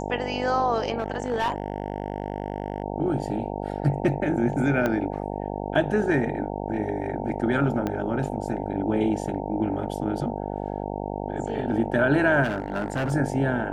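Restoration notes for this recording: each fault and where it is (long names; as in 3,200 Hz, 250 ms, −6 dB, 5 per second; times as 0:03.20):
mains buzz 50 Hz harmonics 18 −31 dBFS
0:00.98–0:02.84: clipping −20 dBFS
0:04.86: click −12 dBFS
0:07.87: click −15 dBFS
0:12.43–0:13.13: clipping −22 dBFS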